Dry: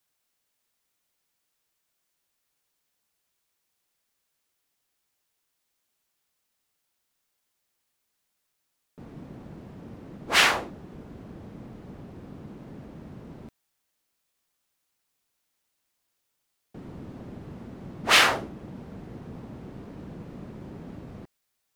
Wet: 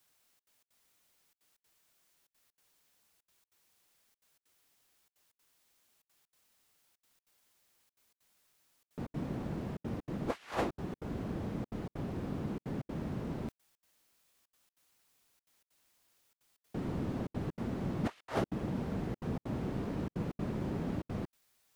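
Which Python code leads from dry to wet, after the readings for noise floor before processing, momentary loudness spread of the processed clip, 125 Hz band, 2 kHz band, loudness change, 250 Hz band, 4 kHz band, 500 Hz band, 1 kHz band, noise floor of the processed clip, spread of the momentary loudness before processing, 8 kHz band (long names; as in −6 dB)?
−79 dBFS, 5 LU, +4.0 dB, −21.5 dB, −17.5 dB, +3.5 dB, −25.5 dB, −2.0 dB, −11.5 dB, below −85 dBFS, 17 LU, −23.0 dB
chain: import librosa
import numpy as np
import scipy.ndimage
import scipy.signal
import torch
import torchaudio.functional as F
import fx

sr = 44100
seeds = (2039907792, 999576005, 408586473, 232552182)

y = fx.over_compress(x, sr, threshold_db=-33.0, ratio=-0.5)
y = fx.step_gate(y, sr, bpm=192, pattern='xxxxx.xx.xxx', floor_db=-60.0, edge_ms=4.5)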